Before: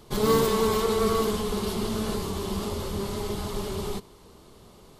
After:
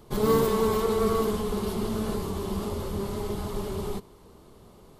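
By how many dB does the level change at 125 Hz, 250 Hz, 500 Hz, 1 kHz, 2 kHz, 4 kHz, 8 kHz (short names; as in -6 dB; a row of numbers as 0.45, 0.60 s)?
0.0, 0.0, -0.5, -1.5, -3.5, -6.0, -5.0 dB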